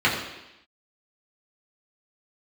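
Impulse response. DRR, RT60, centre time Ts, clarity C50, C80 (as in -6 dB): -6.5 dB, 0.90 s, 41 ms, 5.0 dB, 6.5 dB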